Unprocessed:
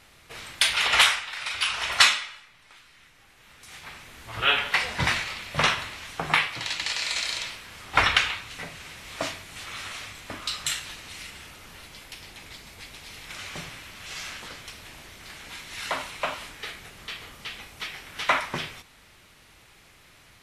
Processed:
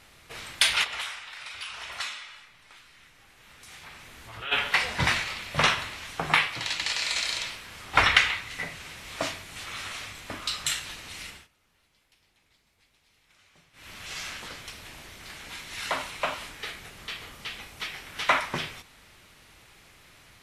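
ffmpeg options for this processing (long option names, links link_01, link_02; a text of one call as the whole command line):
ffmpeg -i in.wav -filter_complex "[0:a]asplit=3[link_01][link_02][link_03];[link_01]afade=type=out:start_time=0.83:duration=0.02[link_04];[link_02]acompressor=threshold=-44dB:ratio=2:attack=3.2:release=140:knee=1:detection=peak,afade=type=in:start_time=0.83:duration=0.02,afade=type=out:start_time=4.51:duration=0.02[link_05];[link_03]afade=type=in:start_time=4.51:duration=0.02[link_06];[link_04][link_05][link_06]amix=inputs=3:normalize=0,asettb=1/sr,asplit=3[link_07][link_08][link_09];[link_07]atrim=end=8.074[link_10];[link_08]atrim=start=8.07:end=8.75,asetpts=PTS-STARTPTS,afade=type=in:duration=0.004:curve=qsin,afade=type=out:start_time=0.676:duration=0.004:curve=qsin,equalizer=frequency=2000:width=7.4:gain=8[link_11];[link_09]atrim=start=8.746[link_12];[link_10][link_11]acrossfade=duration=0.004:curve1=hsin:curve2=qsin[link_13];[link_13][link_12]acrossfade=duration=0.004:curve1=qsin:curve2=hsin,asplit=3[link_14][link_15][link_16];[link_14]atrim=end=11.48,asetpts=PTS-STARTPTS,afade=type=out:start_time=11.29:duration=0.19:silence=0.0707946[link_17];[link_15]atrim=start=11.48:end=13.73,asetpts=PTS-STARTPTS,volume=-23dB[link_18];[link_16]atrim=start=13.73,asetpts=PTS-STARTPTS,afade=type=in:duration=0.19:silence=0.0707946[link_19];[link_17][link_18][link_19]concat=n=3:v=0:a=1" out.wav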